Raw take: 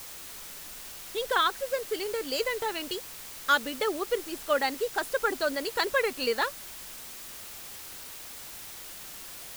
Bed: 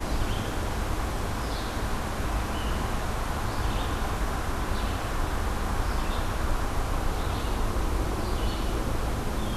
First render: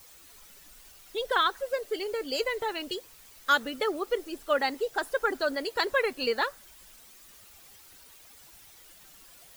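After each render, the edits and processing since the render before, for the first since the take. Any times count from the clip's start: denoiser 12 dB, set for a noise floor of -43 dBFS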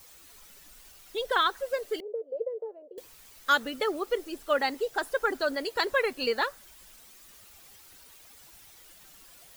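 2–2.98 Butterworth band-pass 520 Hz, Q 2.9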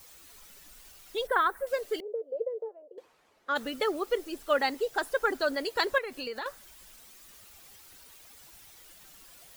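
1.27–1.67 band shelf 4300 Hz -14.5 dB; 2.68–3.55 band-pass 1100 Hz -> 420 Hz, Q 0.78; 5.98–6.46 compressor 4:1, threshold -34 dBFS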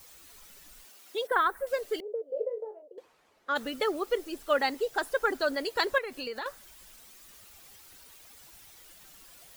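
0.85–1.32 elliptic high-pass 200 Hz; 2.27–2.82 flutter echo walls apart 3.6 m, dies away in 0.21 s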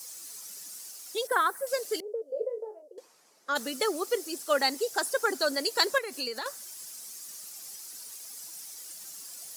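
HPF 150 Hz 24 dB/oct; band shelf 7600 Hz +13.5 dB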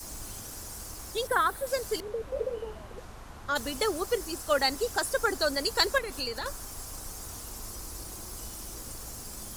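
add bed -16.5 dB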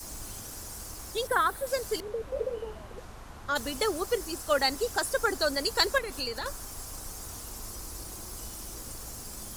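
nothing audible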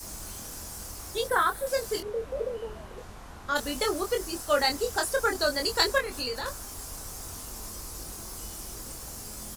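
doubler 24 ms -4.5 dB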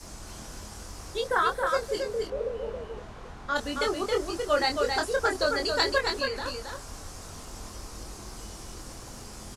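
air absorption 67 m; echo 0.272 s -4.5 dB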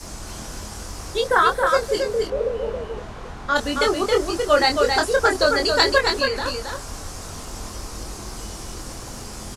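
gain +8 dB

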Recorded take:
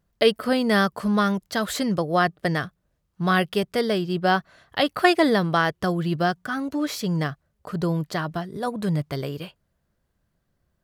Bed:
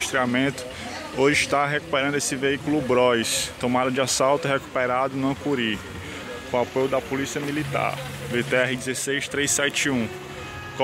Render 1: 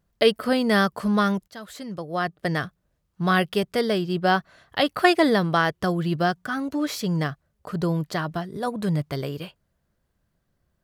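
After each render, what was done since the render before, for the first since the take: 1.48–2.61 fade in quadratic, from -14.5 dB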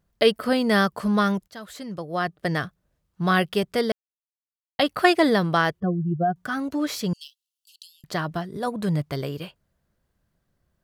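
3.92–4.79 mute; 5.8–6.36 spectral contrast raised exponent 2.5; 7.13–8.04 Chebyshev high-pass 2700 Hz, order 8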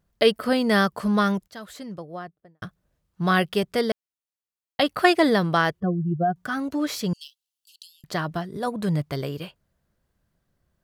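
1.6–2.62 studio fade out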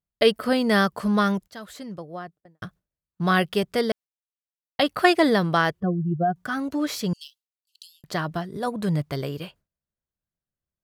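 gate with hold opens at -42 dBFS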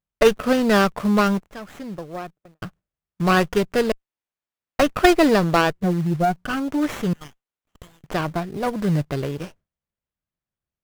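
in parallel at -6 dB: companded quantiser 4-bit; on the sum: running maximum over 9 samples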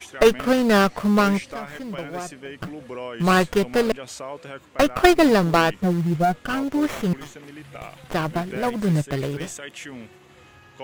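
add bed -14.5 dB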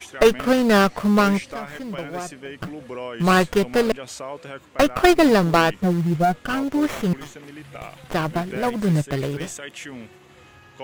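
gain +1 dB; limiter -3 dBFS, peak gain reduction 2.5 dB

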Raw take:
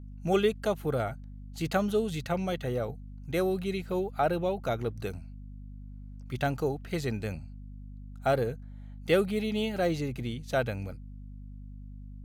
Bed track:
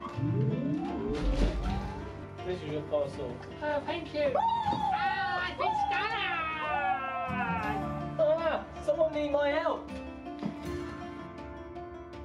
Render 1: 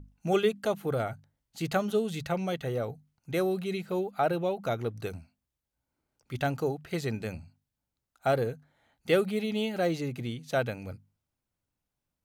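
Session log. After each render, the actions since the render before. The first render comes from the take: notches 50/100/150/200/250 Hz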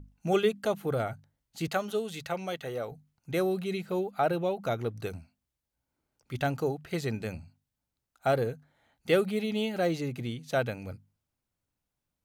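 1.68–2.92 low shelf 260 Hz -11.5 dB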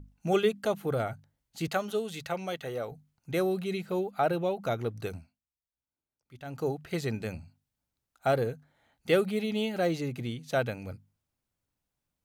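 5.17–6.69 dip -15 dB, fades 0.24 s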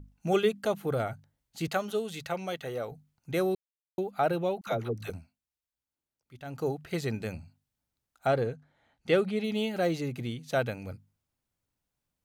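3.55–3.98 mute; 4.61–5.1 dispersion lows, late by 64 ms, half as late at 600 Hz; 8.27–9.44 air absorption 56 m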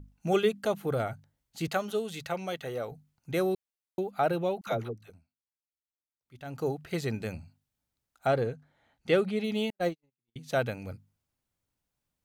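4.81–6.39 dip -15.5 dB, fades 0.19 s; 9.7–10.36 gate -27 dBFS, range -58 dB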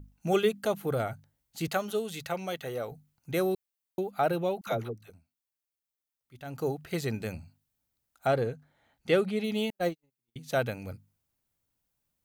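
high shelf 11000 Hz +9 dB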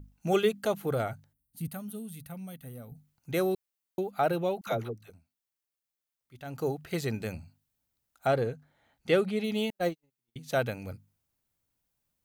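1.33–2.96 spectral gain 280–8300 Hz -16 dB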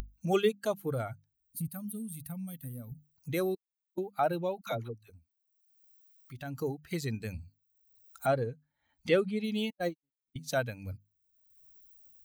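per-bin expansion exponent 1.5; upward compressor, threshold -31 dBFS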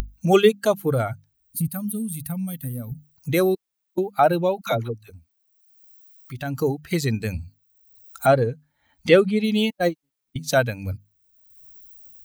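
gain +11.5 dB

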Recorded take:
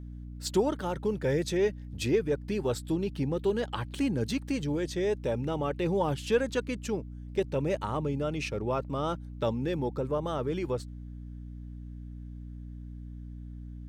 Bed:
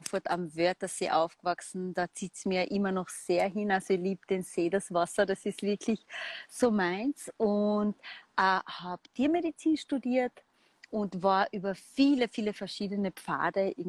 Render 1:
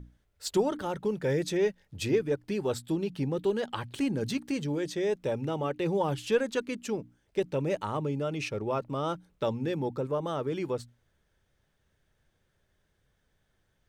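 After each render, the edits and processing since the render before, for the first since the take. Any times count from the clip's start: notches 60/120/180/240/300 Hz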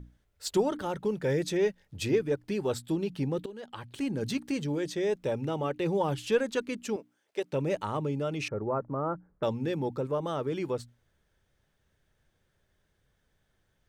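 3.46–4.32 fade in, from -18 dB; 6.96–7.53 HPF 430 Hz; 8.48–9.43 steep low-pass 1700 Hz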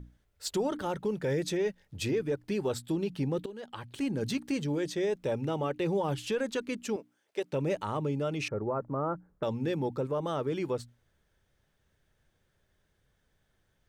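limiter -22 dBFS, peak gain reduction 7.5 dB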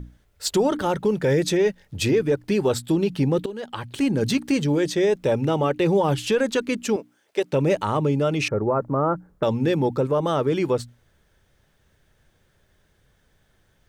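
gain +10 dB

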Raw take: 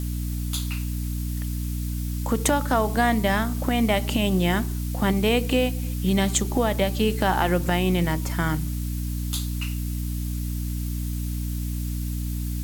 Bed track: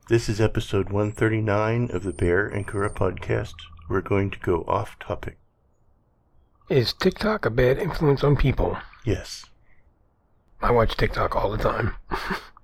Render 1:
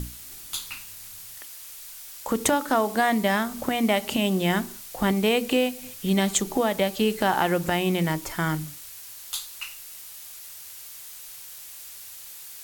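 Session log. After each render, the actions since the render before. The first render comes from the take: notches 60/120/180/240/300 Hz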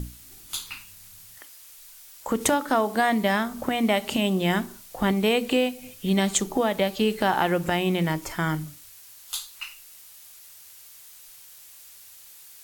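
noise print and reduce 6 dB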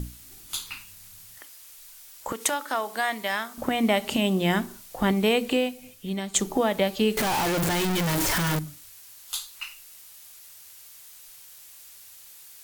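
2.32–3.58 HPF 1200 Hz 6 dB/oct; 5.34–6.34 fade out, to -12 dB; 7.17–8.59 infinite clipping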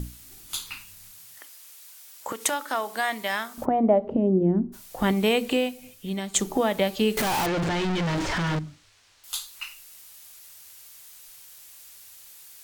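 1.11–2.43 HPF 240 Hz 6 dB/oct; 3.64–4.72 synth low-pass 850 Hz -> 260 Hz, resonance Q 2; 7.46–9.24 air absorption 130 m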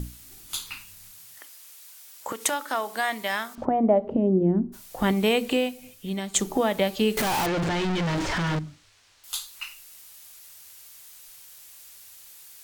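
3.55–3.96 air absorption 140 m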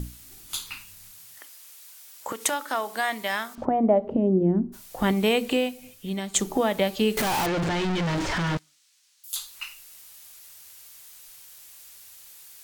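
8.57–9.36 differentiator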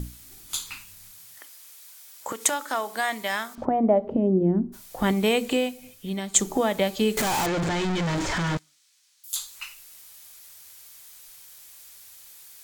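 notch 2800 Hz, Q 26; dynamic EQ 7200 Hz, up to +6 dB, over -51 dBFS, Q 2.9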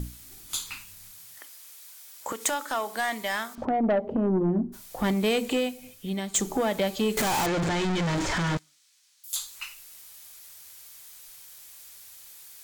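soft clip -18.5 dBFS, distortion -13 dB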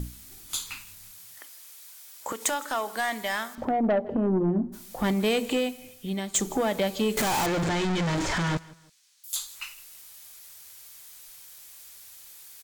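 feedback echo 0.162 s, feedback 34%, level -22 dB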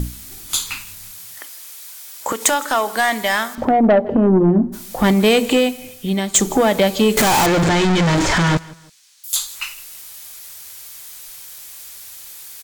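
gain +11 dB

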